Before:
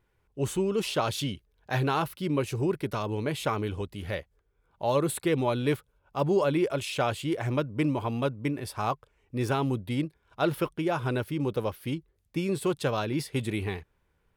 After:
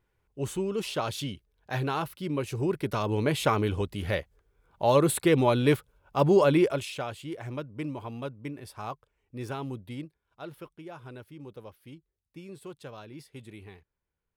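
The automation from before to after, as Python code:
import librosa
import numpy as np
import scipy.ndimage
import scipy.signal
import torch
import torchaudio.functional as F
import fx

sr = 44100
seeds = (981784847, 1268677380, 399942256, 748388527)

y = fx.gain(x, sr, db=fx.line((2.39, -3.0), (3.22, 4.0), (6.61, 4.0), (7.05, -8.0), (9.88, -8.0), (10.45, -15.5)))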